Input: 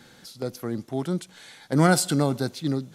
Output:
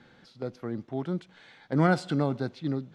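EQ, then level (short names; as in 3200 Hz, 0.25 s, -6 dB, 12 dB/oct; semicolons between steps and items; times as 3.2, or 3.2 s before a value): LPF 2900 Hz 12 dB/oct; -4.0 dB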